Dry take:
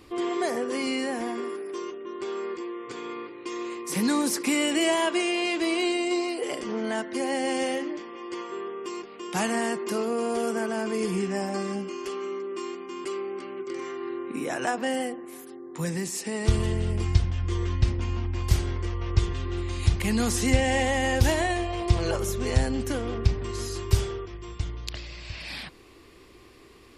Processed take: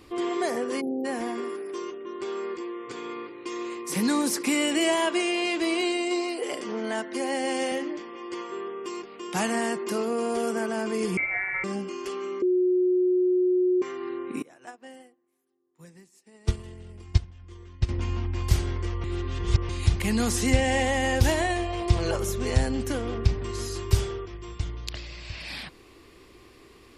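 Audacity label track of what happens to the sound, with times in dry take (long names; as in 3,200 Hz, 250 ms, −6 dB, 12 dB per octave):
0.810000	1.050000	time-frequency box erased 850–11,000 Hz
5.810000	7.720000	Bessel high-pass filter 200 Hz
11.170000	11.640000	voice inversion scrambler carrier 2,500 Hz
12.420000	13.820000	beep over 364 Hz −19 dBFS
14.420000	17.890000	expander for the loud parts 2.5 to 1, over −37 dBFS
19.040000	19.690000	reverse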